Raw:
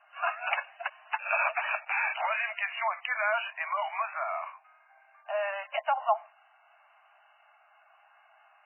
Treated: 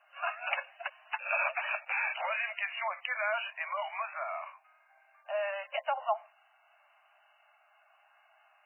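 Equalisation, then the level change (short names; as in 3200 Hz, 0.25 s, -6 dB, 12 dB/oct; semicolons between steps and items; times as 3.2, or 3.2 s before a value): bell 530 Hz +14 dB 0.31 oct; high shelf 2300 Hz +10.5 dB; -7.5 dB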